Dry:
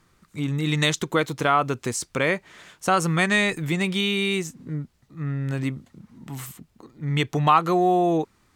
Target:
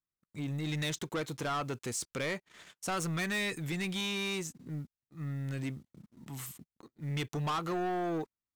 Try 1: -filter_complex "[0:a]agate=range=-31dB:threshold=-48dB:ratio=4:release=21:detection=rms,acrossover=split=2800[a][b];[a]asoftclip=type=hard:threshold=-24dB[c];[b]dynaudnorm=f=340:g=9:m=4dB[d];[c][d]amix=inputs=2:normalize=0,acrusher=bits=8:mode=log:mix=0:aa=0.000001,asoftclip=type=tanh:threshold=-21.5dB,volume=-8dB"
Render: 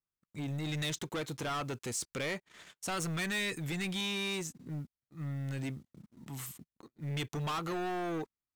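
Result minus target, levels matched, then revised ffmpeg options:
hard clip: distortion +13 dB
-filter_complex "[0:a]agate=range=-31dB:threshold=-48dB:ratio=4:release=21:detection=rms,acrossover=split=2800[a][b];[a]asoftclip=type=hard:threshold=-13dB[c];[b]dynaudnorm=f=340:g=9:m=4dB[d];[c][d]amix=inputs=2:normalize=0,acrusher=bits=8:mode=log:mix=0:aa=0.000001,asoftclip=type=tanh:threshold=-21.5dB,volume=-8dB"

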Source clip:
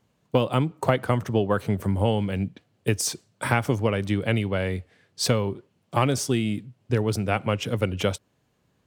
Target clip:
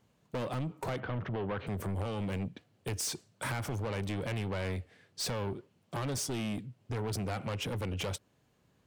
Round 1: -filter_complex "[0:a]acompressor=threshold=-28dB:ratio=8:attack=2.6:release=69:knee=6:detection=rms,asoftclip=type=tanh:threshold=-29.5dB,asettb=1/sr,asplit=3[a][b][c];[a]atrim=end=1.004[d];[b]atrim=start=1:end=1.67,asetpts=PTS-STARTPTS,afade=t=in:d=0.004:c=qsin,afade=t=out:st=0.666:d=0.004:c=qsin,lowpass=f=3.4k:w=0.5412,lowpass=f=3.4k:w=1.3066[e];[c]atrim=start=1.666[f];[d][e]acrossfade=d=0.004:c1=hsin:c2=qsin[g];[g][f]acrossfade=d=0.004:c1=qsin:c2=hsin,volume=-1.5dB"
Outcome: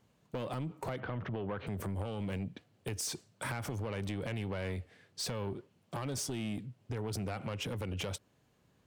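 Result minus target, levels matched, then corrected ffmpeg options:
compressor: peak gain reduction +7 dB
-filter_complex "[0:a]acompressor=threshold=-20dB:ratio=8:attack=2.6:release=69:knee=6:detection=rms,asoftclip=type=tanh:threshold=-29.5dB,asettb=1/sr,asplit=3[a][b][c];[a]atrim=end=1.004[d];[b]atrim=start=1:end=1.67,asetpts=PTS-STARTPTS,afade=t=in:d=0.004:c=qsin,afade=t=out:st=0.666:d=0.004:c=qsin,lowpass=f=3.4k:w=0.5412,lowpass=f=3.4k:w=1.3066[e];[c]atrim=start=1.666[f];[d][e]acrossfade=d=0.004:c1=hsin:c2=qsin[g];[g][f]acrossfade=d=0.004:c1=qsin:c2=hsin,volume=-1.5dB"

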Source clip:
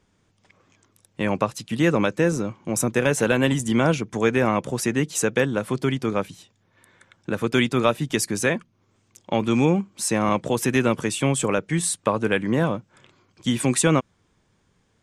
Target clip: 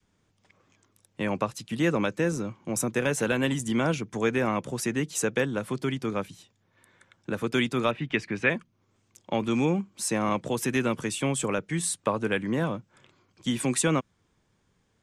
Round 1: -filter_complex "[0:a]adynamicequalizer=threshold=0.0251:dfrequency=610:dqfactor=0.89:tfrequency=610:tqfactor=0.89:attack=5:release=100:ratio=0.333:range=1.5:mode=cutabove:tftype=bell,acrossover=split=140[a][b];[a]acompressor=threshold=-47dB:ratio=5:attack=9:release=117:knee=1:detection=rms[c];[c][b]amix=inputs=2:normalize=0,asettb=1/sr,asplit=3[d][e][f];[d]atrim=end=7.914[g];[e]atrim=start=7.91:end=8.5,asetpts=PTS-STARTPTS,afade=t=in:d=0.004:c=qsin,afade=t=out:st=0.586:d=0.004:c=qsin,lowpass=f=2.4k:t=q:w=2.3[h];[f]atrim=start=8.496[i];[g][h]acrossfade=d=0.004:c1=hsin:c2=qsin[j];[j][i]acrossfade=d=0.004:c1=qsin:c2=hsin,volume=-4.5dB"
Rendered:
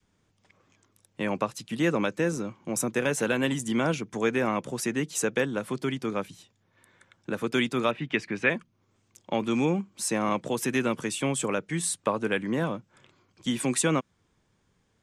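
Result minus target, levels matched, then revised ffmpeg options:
compressor: peak gain reduction +9.5 dB
-filter_complex "[0:a]adynamicequalizer=threshold=0.0251:dfrequency=610:dqfactor=0.89:tfrequency=610:tqfactor=0.89:attack=5:release=100:ratio=0.333:range=1.5:mode=cutabove:tftype=bell,acrossover=split=140[a][b];[a]acompressor=threshold=-35dB:ratio=5:attack=9:release=117:knee=1:detection=rms[c];[c][b]amix=inputs=2:normalize=0,asettb=1/sr,asplit=3[d][e][f];[d]atrim=end=7.914[g];[e]atrim=start=7.91:end=8.5,asetpts=PTS-STARTPTS,afade=t=in:d=0.004:c=qsin,afade=t=out:st=0.586:d=0.004:c=qsin,lowpass=f=2.4k:t=q:w=2.3[h];[f]atrim=start=8.496[i];[g][h]acrossfade=d=0.004:c1=hsin:c2=qsin[j];[j][i]acrossfade=d=0.004:c1=qsin:c2=hsin,volume=-4.5dB"

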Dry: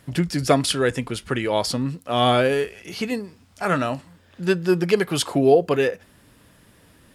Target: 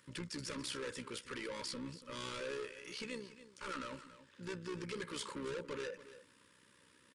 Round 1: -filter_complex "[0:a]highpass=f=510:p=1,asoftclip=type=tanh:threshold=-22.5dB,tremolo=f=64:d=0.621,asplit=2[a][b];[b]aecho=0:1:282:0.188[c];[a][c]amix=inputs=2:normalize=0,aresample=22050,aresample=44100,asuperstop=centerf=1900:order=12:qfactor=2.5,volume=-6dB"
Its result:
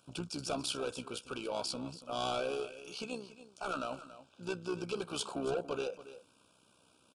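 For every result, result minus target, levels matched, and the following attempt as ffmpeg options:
2000 Hz band -5.0 dB; soft clip: distortion -5 dB
-filter_complex "[0:a]highpass=f=510:p=1,asoftclip=type=tanh:threshold=-22.5dB,tremolo=f=64:d=0.621,asplit=2[a][b];[b]aecho=0:1:282:0.188[c];[a][c]amix=inputs=2:normalize=0,aresample=22050,aresample=44100,asuperstop=centerf=720:order=12:qfactor=2.5,volume=-6dB"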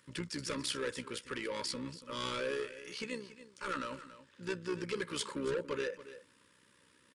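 soft clip: distortion -5 dB
-filter_complex "[0:a]highpass=f=510:p=1,asoftclip=type=tanh:threshold=-31dB,tremolo=f=64:d=0.621,asplit=2[a][b];[b]aecho=0:1:282:0.188[c];[a][c]amix=inputs=2:normalize=0,aresample=22050,aresample=44100,asuperstop=centerf=720:order=12:qfactor=2.5,volume=-6dB"

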